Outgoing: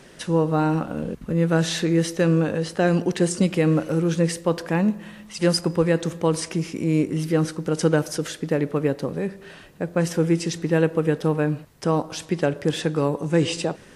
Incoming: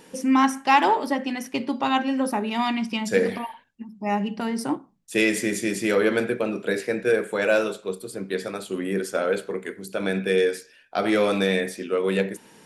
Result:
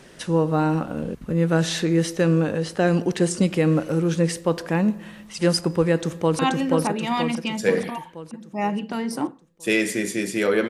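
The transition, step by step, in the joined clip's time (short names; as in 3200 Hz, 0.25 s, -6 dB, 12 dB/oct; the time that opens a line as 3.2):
outgoing
5.93–6.39 echo throw 0.48 s, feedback 55%, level -1.5 dB
6.39 switch to incoming from 1.87 s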